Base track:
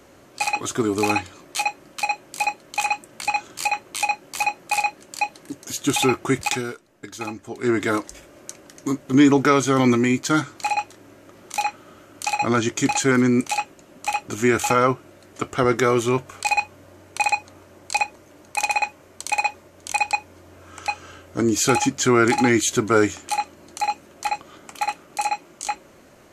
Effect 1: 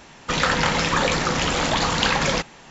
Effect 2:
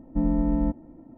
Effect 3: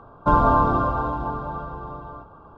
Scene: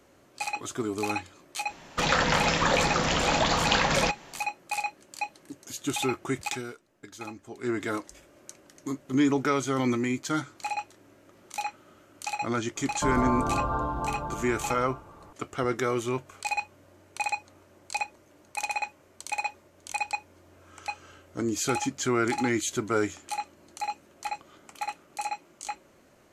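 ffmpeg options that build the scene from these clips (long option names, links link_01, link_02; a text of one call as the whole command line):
ffmpeg -i bed.wav -i cue0.wav -i cue1.wav -i cue2.wav -filter_complex "[0:a]volume=-9dB[link_01];[1:a]equalizer=frequency=650:width=3.4:gain=4.5[link_02];[3:a]alimiter=limit=-14.5dB:level=0:latency=1:release=59[link_03];[link_02]atrim=end=2.7,asetpts=PTS-STARTPTS,volume=-4dB,afade=type=in:duration=0.004:curve=hsin,afade=type=out:start_time=2.696:duration=0.004:curve=hsin,adelay=1690[link_04];[link_03]atrim=end=2.57,asetpts=PTS-STARTPTS,volume=-4dB,afade=type=in:duration=0.004:curve=hsin,afade=type=out:start_time=2.566:duration=0.004:curve=hsin,adelay=12760[link_05];[link_01][link_04][link_05]amix=inputs=3:normalize=0" out.wav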